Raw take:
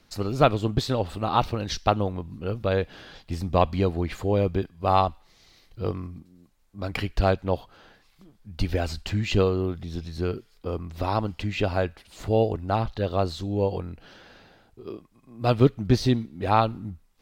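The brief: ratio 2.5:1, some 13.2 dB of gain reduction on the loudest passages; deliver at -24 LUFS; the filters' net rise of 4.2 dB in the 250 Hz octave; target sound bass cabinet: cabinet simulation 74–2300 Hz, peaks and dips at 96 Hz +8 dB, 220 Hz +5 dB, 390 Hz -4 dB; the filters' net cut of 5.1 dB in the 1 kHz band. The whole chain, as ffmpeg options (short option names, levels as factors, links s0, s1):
-af "equalizer=f=250:t=o:g=3,equalizer=f=1000:t=o:g=-7.5,acompressor=threshold=0.0224:ratio=2.5,highpass=f=74:w=0.5412,highpass=f=74:w=1.3066,equalizer=f=96:t=q:w=4:g=8,equalizer=f=220:t=q:w=4:g=5,equalizer=f=390:t=q:w=4:g=-4,lowpass=f=2300:w=0.5412,lowpass=f=2300:w=1.3066,volume=2.82"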